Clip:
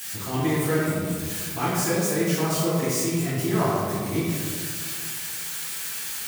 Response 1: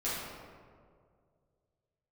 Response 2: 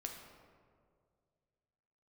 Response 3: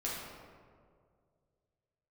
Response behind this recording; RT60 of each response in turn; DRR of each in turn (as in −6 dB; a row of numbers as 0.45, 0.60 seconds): 1; 2.1, 2.1, 2.1 seconds; −10.5, 1.5, −6.5 decibels